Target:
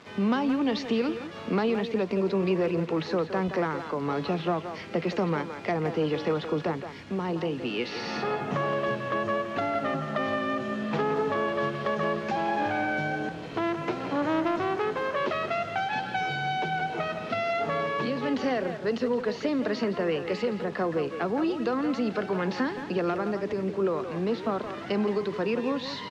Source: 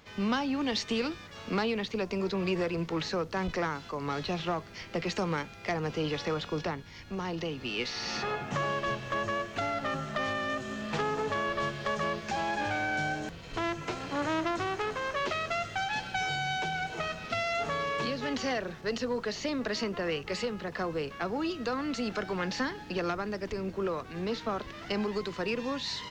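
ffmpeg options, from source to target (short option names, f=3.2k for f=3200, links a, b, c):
-filter_complex "[0:a]tiltshelf=f=970:g=4.5,asplit=2[a][b];[b]acompressor=threshold=-37dB:ratio=4,volume=-0.5dB[c];[a][c]amix=inputs=2:normalize=0,acrusher=bits=7:mix=0:aa=0.000001,highpass=160,lowpass=4.3k,asplit=2[d][e];[e]adelay=170,highpass=300,lowpass=3.4k,asoftclip=type=hard:threshold=-23dB,volume=-8dB[f];[d][f]amix=inputs=2:normalize=0"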